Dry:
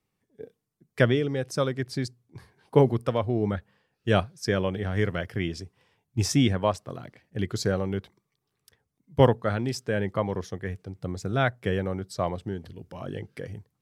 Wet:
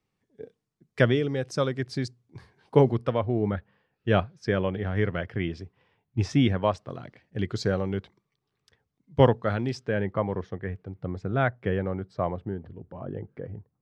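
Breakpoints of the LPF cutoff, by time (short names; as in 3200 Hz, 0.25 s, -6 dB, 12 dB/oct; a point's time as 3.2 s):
2.79 s 6800 Hz
3.21 s 3000 Hz
6.28 s 3000 Hz
6.98 s 5000 Hz
9.65 s 5000 Hz
10.13 s 2200 Hz
11.96 s 2200 Hz
12.97 s 1100 Hz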